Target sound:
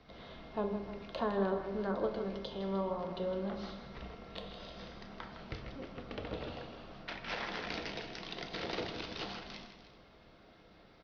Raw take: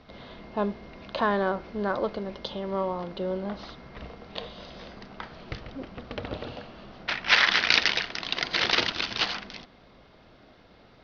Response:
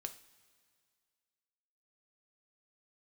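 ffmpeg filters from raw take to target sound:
-filter_complex "[0:a]bandreject=f=67.85:t=h:w=4,bandreject=f=135.7:t=h:w=4,bandreject=f=203.55:t=h:w=4,bandreject=f=271.4:t=h:w=4,bandreject=f=339.25:t=h:w=4,bandreject=f=407.1:t=h:w=4,bandreject=f=474.95:t=h:w=4,bandreject=f=542.8:t=h:w=4,bandreject=f=610.65:t=h:w=4,bandreject=f=678.5:t=h:w=4,bandreject=f=746.35:t=h:w=4,bandreject=f=814.2:t=h:w=4,bandreject=f=882.05:t=h:w=4,bandreject=f=949.9:t=h:w=4,bandreject=f=1.01775k:t=h:w=4,acrossover=split=570|710[a][b][c];[c]acompressor=threshold=-38dB:ratio=4[d];[a][b][d]amix=inputs=3:normalize=0,aecho=1:1:159|305:0.316|0.2[e];[1:a]atrim=start_sample=2205,asetrate=37485,aresample=44100[f];[e][f]afir=irnorm=-1:irlink=0,volume=-3.5dB"

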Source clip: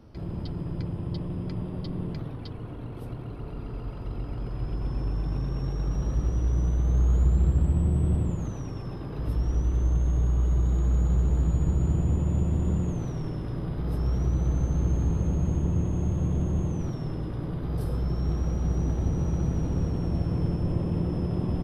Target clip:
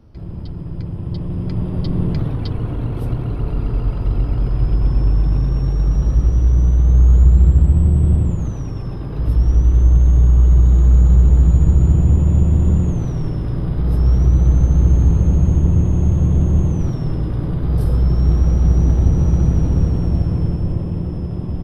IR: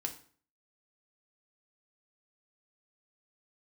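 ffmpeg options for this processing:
-af "lowshelf=f=130:g=9,dynaudnorm=f=250:g=13:m=13dB,volume=-1dB"

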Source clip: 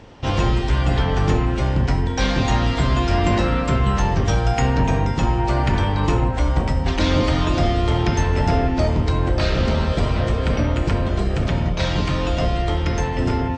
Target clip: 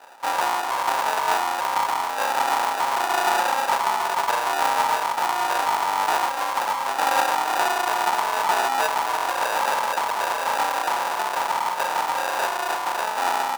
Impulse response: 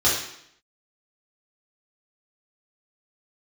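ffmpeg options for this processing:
-af "acrusher=samples=41:mix=1:aa=0.000001,highpass=f=910:t=q:w=4.9"

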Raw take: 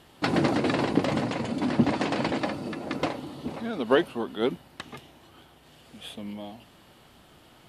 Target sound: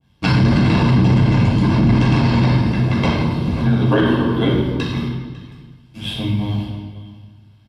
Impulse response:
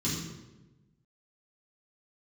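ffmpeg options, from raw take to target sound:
-filter_complex "[0:a]agate=range=-22dB:threshold=-48dB:ratio=16:detection=peak,aecho=1:1:1.9:0.71,aecho=1:1:548:0.0891,tremolo=f=100:d=1[a];[1:a]atrim=start_sample=2205,asetrate=33957,aresample=44100[b];[a][b]afir=irnorm=-1:irlink=0,asplit=2[c][d];[d]acompressor=threshold=-23dB:ratio=6,volume=3dB[e];[c][e]amix=inputs=2:normalize=0,alimiter=limit=-6.5dB:level=0:latency=1:release=15,adynamicequalizer=threshold=0.0126:dfrequency=1800:dqfactor=0.7:tfrequency=1800:tqfactor=0.7:attack=5:release=100:ratio=0.375:range=1.5:mode=cutabove:tftype=highshelf"

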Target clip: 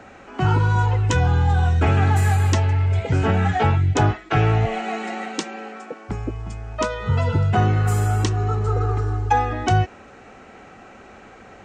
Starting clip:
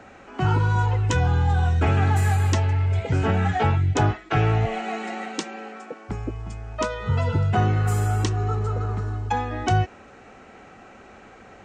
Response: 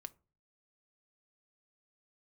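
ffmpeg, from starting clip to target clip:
-filter_complex "[0:a]asettb=1/sr,asplit=3[a][b][c];[a]atrim=end=8.674[d];[b]atrim=start=8.67:end=9.53,asetpts=PTS-STARTPTS,afade=t=in:d=0.004:c=qsin,afade=t=out:st=0.856:d=0.004:c=qsin,aecho=1:1:2.5:0.8,atrim=end_sample=37926[e];[c]atrim=start=9.526[f];[d][e]acrossfade=d=0.004:c1=hsin:c2=qsin[g];[g][f]acrossfade=d=0.004:c1=qsin:c2=hsin,volume=2.5dB"

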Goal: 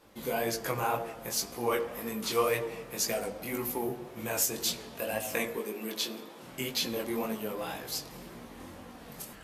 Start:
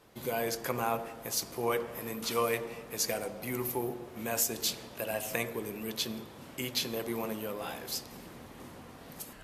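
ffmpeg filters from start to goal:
-filter_complex "[0:a]flanger=delay=17:depth=6.4:speed=1.9,asettb=1/sr,asplit=3[a][b][c];[a]atrim=end=5.574[d];[b]atrim=start=5.57:end=6.43,asetpts=PTS-STARTPTS,afade=t=in:d=0.004:c=qsin,afade=t=out:st=0.856:d=0.004:c=qsin,highpass=f=210:w=0.5412,highpass=f=210:w=1.3066[e];[c]atrim=start=6.426[f];[d][e]acrossfade=d=0.004:c1=hsin:c2=qsin[g];[g][f]acrossfade=d=0.004:c1=qsin:c2=hsin,flanger=delay=3.6:depth=2.9:regen=-54:speed=0.57:shape=sinusoidal,volume=8.5dB"

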